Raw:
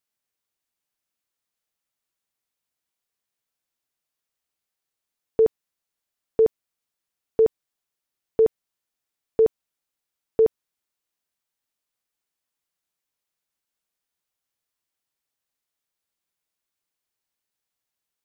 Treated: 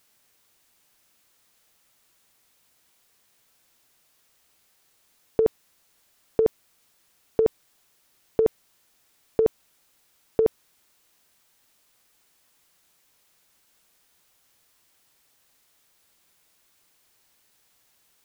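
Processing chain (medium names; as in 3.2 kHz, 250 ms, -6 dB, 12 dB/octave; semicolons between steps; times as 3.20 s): compressor with a negative ratio -23 dBFS, ratio -0.5; trim +8.5 dB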